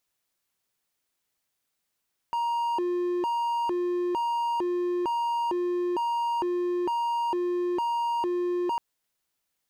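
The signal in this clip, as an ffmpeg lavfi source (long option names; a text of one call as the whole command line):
ffmpeg -f lavfi -i "aevalsrc='0.075*(1-4*abs(mod((647*t+293/1.1*(0.5-abs(mod(1.1*t,1)-0.5)))+0.25,1)-0.5))':duration=6.45:sample_rate=44100" out.wav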